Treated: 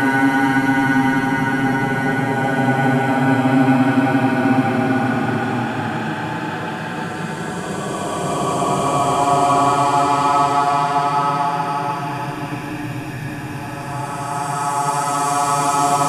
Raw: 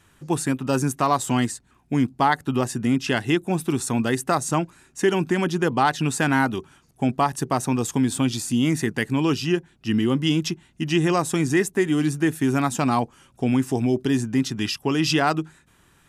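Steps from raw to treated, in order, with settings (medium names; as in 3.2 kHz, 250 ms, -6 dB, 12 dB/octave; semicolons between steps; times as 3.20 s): backward echo that repeats 318 ms, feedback 61%, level -1 dB; Paulstretch 37×, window 0.10 s, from 6.96 s; trim +2 dB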